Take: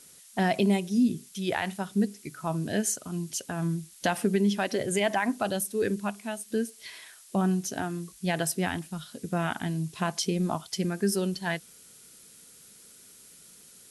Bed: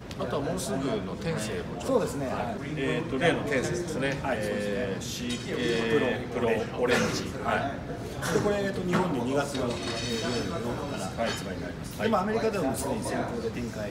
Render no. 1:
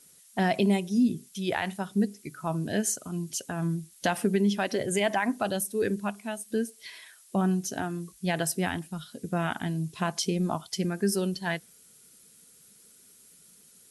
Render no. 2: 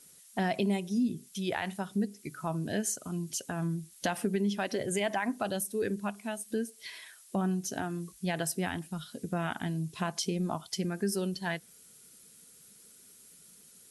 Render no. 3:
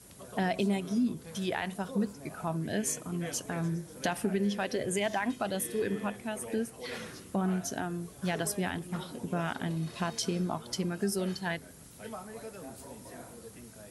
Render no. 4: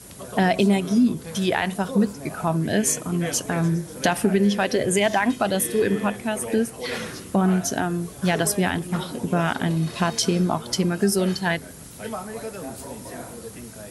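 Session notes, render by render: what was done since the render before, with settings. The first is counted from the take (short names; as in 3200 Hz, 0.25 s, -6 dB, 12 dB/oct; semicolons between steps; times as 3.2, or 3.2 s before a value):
denoiser 6 dB, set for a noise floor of -53 dBFS
compressor 1.5:1, threshold -35 dBFS, peak gain reduction 6 dB
add bed -17 dB
gain +10.5 dB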